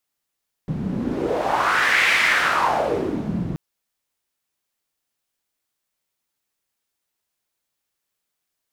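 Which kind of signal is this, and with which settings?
wind from filtered noise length 2.88 s, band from 170 Hz, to 2,100 Hz, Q 3.2, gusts 1, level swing 8 dB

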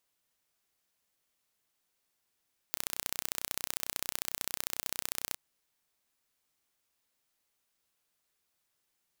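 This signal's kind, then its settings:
impulse train 31.1 per second, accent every 2, −4.5 dBFS 2.62 s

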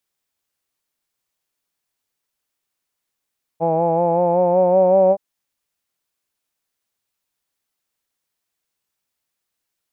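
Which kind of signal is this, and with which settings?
vowel from formants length 1.57 s, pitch 162 Hz, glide +3 semitones, vibrato depth 0.45 semitones, F1 570 Hz, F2 850 Hz, F3 2,400 Hz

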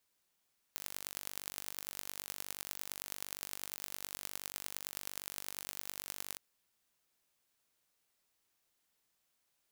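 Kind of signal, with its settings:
impulse train 48.7 per second, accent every 5, −11.5 dBFS 5.62 s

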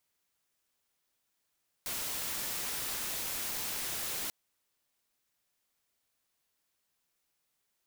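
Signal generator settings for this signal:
noise white, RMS −36.5 dBFS 2.44 s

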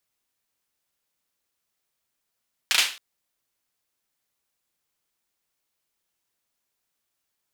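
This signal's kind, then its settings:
synth clap length 0.27 s, bursts 3, apart 35 ms, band 2,800 Hz, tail 0.37 s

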